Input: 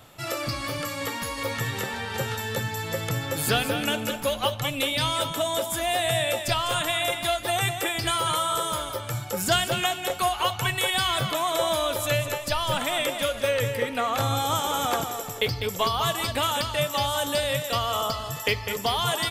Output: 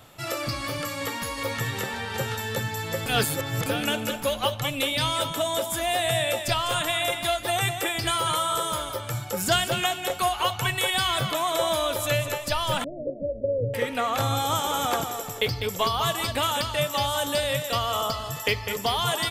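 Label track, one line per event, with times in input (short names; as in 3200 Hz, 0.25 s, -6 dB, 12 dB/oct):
3.060000	3.660000	reverse
12.840000	13.740000	steep low-pass 600 Hz 72 dB/oct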